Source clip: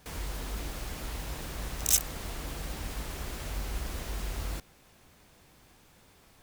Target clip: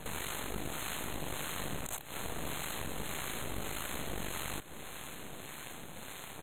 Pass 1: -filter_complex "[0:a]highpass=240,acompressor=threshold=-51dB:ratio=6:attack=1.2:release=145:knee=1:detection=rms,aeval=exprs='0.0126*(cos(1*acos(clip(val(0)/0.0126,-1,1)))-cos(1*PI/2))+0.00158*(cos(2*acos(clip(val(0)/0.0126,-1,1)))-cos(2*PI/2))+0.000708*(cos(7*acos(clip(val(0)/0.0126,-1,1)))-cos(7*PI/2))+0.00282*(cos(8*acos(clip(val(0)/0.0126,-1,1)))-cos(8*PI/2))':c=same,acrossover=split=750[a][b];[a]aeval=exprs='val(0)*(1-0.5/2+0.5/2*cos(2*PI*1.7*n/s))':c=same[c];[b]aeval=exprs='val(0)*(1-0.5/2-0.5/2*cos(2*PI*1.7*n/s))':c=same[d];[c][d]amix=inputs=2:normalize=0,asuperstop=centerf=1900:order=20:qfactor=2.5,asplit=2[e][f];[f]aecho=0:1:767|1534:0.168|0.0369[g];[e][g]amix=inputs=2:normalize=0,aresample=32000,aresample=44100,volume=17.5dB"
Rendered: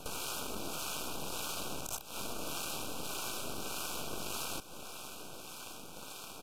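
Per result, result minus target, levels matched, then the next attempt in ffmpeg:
125 Hz band -6.5 dB; 2000 Hz band -4.0 dB
-filter_complex "[0:a]highpass=110,acompressor=threshold=-51dB:ratio=6:attack=1.2:release=145:knee=1:detection=rms,aeval=exprs='0.0126*(cos(1*acos(clip(val(0)/0.0126,-1,1)))-cos(1*PI/2))+0.00158*(cos(2*acos(clip(val(0)/0.0126,-1,1)))-cos(2*PI/2))+0.000708*(cos(7*acos(clip(val(0)/0.0126,-1,1)))-cos(7*PI/2))+0.00282*(cos(8*acos(clip(val(0)/0.0126,-1,1)))-cos(8*PI/2))':c=same,acrossover=split=750[a][b];[a]aeval=exprs='val(0)*(1-0.5/2+0.5/2*cos(2*PI*1.7*n/s))':c=same[c];[b]aeval=exprs='val(0)*(1-0.5/2-0.5/2*cos(2*PI*1.7*n/s))':c=same[d];[c][d]amix=inputs=2:normalize=0,asuperstop=centerf=1900:order=20:qfactor=2.5,asplit=2[e][f];[f]aecho=0:1:767|1534:0.168|0.0369[g];[e][g]amix=inputs=2:normalize=0,aresample=32000,aresample=44100,volume=17.5dB"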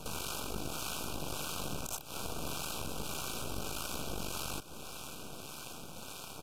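2000 Hz band -4.5 dB
-filter_complex "[0:a]highpass=110,acompressor=threshold=-51dB:ratio=6:attack=1.2:release=145:knee=1:detection=rms,aeval=exprs='0.0126*(cos(1*acos(clip(val(0)/0.0126,-1,1)))-cos(1*PI/2))+0.00158*(cos(2*acos(clip(val(0)/0.0126,-1,1)))-cos(2*PI/2))+0.000708*(cos(7*acos(clip(val(0)/0.0126,-1,1)))-cos(7*PI/2))+0.00282*(cos(8*acos(clip(val(0)/0.0126,-1,1)))-cos(8*PI/2))':c=same,acrossover=split=750[a][b];[a]aeval=exprs='val(0)*(1-0.5/2+0.5/2*cos(2*PI*1.7*n/s))':c=same[c];[b]aeval=exprs='val(0)*(1-0.5/2-0.5/2*cos(2*PI*1.7*n/s))':c=same[d];[c][d]amix=inputs=2:normalize=0,asuperstop=centerf=5200:order=20:qfactor=2.5,asplit=2[e][f];[f]aecho=0:1:767|1534:0.168|0.0369[g];[e][g]amix=inputs=2:normalize=0,aresample=32000,aresample=44100,volume=17.5dB"

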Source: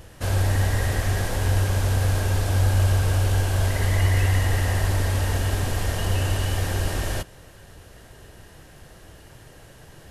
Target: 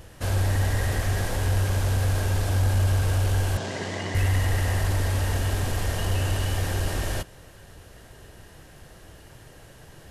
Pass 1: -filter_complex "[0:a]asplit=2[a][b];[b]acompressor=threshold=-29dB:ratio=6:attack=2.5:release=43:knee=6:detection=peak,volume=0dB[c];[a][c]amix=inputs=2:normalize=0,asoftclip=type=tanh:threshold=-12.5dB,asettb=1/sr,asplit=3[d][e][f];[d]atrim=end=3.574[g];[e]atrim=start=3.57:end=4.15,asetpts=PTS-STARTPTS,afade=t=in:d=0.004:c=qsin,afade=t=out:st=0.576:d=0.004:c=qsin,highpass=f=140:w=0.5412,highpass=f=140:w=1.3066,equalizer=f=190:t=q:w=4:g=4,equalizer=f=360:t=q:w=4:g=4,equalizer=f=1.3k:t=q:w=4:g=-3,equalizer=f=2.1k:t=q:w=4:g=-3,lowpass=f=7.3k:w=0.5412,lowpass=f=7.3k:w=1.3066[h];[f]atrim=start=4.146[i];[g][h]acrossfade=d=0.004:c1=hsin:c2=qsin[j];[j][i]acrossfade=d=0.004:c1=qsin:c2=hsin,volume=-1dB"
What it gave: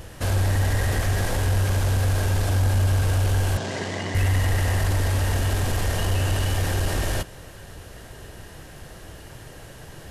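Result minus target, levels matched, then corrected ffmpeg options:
compressor: peak gain reduction +14.5 dB
-filter_complex "[0:a]asoftclip=type=tanh:threshold=-12.5dB,asettb=1/sr,asplit=3[a][b][c];[a]atrim=end=3.574[d];[b]atrim=start=3.57:end=4.15,asetpts=PTS-STARTPTS,afade=t=in:d=0.004:c=qsin,afade=t=out:st=0.576:d=0.004:c=qsin,highpass=f=140:w=0.5412,highpass=f=140:w=1.3066,equalizer=f=190:t=q:w=4:g=4,equalizer=f=360:t=q:w=4:g=4,equalizer=f=1.3k:t=q:w=4:g=-3,equalizer=f=2.1k:t=q:w=4:g=-3,lowpass=f=7.3k:w=0.5412,lowpass=f=7.3k:w=1.3066[e];[c]atrim=start=4.146[f];[d][e]acrossfade=d=0.004:c1=hsin:c2=qsin[g];[g][f]acrossfade=d=0.004:c1=qsin:c2=hsin,volume=-1dB"

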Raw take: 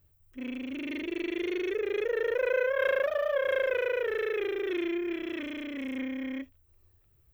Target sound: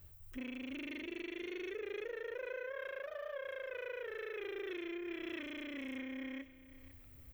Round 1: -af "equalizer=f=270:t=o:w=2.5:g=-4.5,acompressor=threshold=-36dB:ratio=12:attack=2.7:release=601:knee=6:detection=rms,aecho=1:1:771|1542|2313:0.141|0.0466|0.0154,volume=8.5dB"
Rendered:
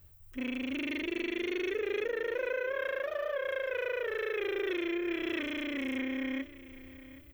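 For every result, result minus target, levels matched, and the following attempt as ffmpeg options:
echo 0.271 s late; compressor: peak gain reduction -9.5 dB
-af "equalizer=f=270:t=o:w=2.5:g=-4.5,acompressor=threshold=-36dB:ratio=12:attack=2.7:release=601:knee=6:detection=rms,aecho=1:1:500|1000|1500:0.141|0.0466|0.0154,volume=8.5dB"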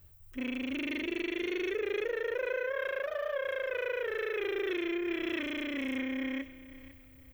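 compressor: peak gain reduction -9.5 dB
-af "equalizer=f=270:t=o:w=2.5:g=-4.5,acompressor=threshold=-46.5dB:ratio=12:attack=2.7:release=601:knee=6:detection=rms,aecho=1:1:500|1000|1500:0.141|0.0466|0.0154,volume=8.5dB"

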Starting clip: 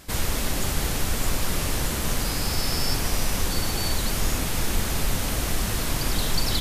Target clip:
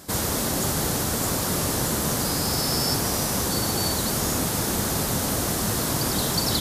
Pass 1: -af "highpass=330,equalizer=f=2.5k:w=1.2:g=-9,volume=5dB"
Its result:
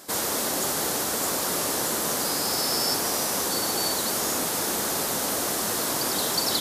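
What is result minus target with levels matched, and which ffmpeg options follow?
125 Hz band -13.0 dB
-af "highpass=110,equalizer=f=2.5k:w=1.2:g=-9,volume=5dB"

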